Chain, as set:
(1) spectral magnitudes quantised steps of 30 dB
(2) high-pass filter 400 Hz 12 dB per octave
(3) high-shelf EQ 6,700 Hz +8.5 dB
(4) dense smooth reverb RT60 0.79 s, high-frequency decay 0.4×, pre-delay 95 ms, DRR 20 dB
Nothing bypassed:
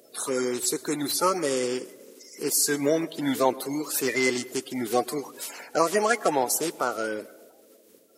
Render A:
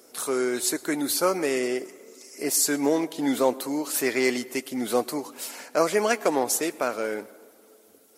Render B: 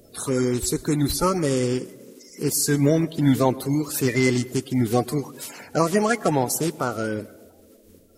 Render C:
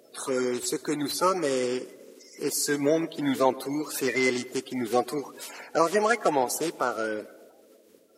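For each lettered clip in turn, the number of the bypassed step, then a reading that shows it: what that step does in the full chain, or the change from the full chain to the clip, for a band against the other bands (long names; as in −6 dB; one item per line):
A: 1, 125 Hz band −3.5 dB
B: 2, 125 Hz band +18.0 dB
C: 3, 8 kHz band −5.0 dB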